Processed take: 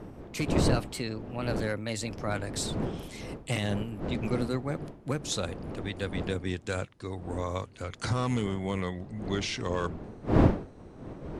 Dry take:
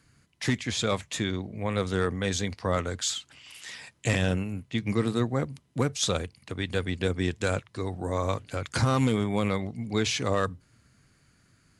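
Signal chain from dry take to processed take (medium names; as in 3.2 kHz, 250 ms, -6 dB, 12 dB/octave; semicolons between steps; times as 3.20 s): gliding tape speed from 122% -> 85%; wind noise 350 Hz -29 dBFS; trim -5 dB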